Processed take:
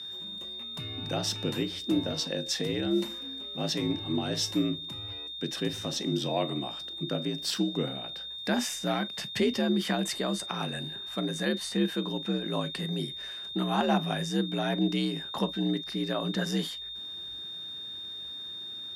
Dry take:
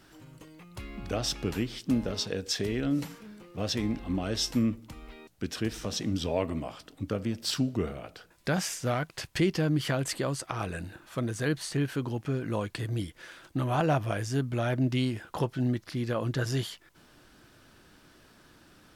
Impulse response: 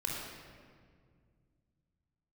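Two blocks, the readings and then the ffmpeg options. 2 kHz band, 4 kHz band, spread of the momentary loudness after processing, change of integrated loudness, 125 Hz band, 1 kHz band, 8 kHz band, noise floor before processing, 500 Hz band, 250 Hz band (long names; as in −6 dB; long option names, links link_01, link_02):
0.0 dB, +6.5 dB, 9 LU, 0.0 dB, −4.5 dB, +1.0 dB, −0.5 dB, −59 dBFS, +0.5 dB, +1.0 dB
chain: -filter_complex "[0:a]aeval=exprs='val(0)+0.0126*sin(2*PI*3600*n/s)':channel_layout=same,asplit=2[link_01][link_02];[1:a]atrim=start_sample=2205,atrim=end_sample=3969,asetrate=74970,aresample=44100[link_03];[link_02][link_03]afir=irnorm=-1:irlink=0,volume=-8dB[link_04];[link_01][link_04]amix=inputs=2:normalize=0,afreqshift=57,volume=-2dB"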